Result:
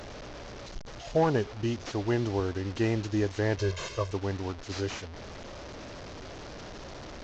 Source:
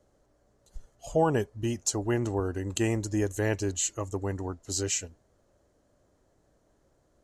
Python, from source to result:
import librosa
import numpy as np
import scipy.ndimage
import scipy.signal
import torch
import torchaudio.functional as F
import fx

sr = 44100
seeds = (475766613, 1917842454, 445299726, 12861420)

y = fx.delta_mod(x, sr, bps=32000, step_db=-36.5)
y = fx.comb(y, sr, ms=1.9, depth=0.85, at=(3.57, 4.12))